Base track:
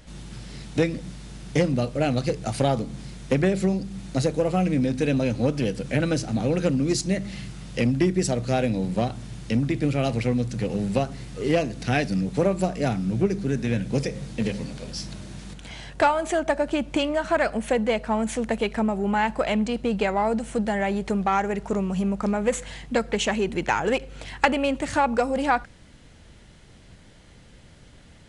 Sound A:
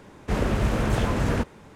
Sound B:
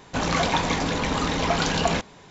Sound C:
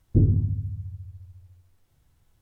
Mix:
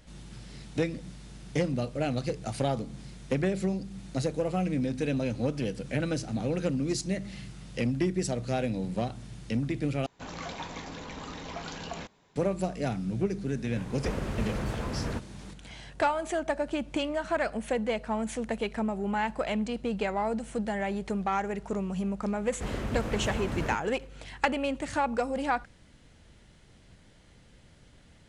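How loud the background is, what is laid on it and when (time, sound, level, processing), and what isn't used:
base track -6.5 dB
10.06 s: replace with B -16 dB
13.76 s: add A -9.5 dB + three bands compressed up and down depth 70%
22.32 s: add A -9.5 dB
not used: C

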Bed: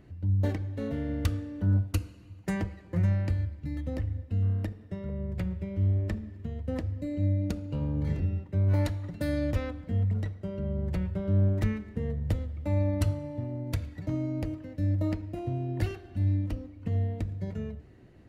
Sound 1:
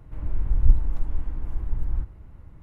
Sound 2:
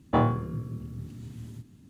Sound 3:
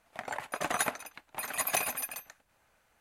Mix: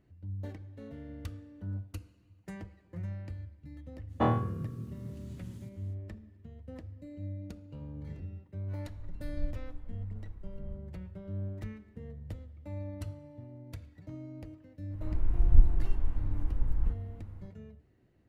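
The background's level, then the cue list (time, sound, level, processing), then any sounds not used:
bed -13 dB
4.07 s: add 2 -4 dB, fades 0.05 s
8.74 s: add 1 -18 dB
14.89 s: add 1 -3 dB, fades 0.05 s
not used: 3

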